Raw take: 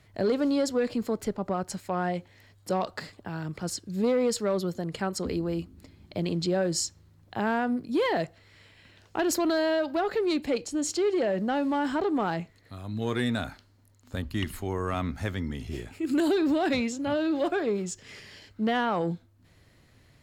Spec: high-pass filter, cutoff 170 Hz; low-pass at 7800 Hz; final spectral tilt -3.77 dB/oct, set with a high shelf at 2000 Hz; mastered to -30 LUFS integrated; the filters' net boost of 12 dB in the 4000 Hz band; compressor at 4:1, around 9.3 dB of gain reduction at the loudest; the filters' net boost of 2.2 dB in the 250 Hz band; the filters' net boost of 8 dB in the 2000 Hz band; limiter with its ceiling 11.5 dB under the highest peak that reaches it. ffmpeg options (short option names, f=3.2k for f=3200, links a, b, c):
-af "highpass=170,lowpass=7.8k,equalizer=f=250:t=o:g=3.5,highshelf=f=2k:g=6.5,equalizer=f=2k:t=o:g=5,equalizer=f=4k:t=o:g=7.5,acompressor=threshold=-29dB:ratio=4,volume=4dB,alimiter=limit=-20.5dB:level=0:latency=1"